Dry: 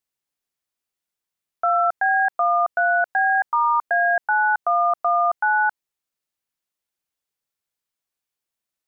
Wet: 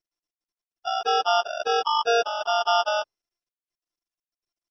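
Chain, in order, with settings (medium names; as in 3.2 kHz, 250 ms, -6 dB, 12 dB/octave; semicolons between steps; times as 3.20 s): level-controlled noise filter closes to 370 Hz, open at -20.5 dBFS; peaking EQ 410 Hz +8.5 dB 0.55 oct; plain phase-vocoder stretch 0.53×; sample-and-hold 21×; MP2 64 kbps 22.05 kHz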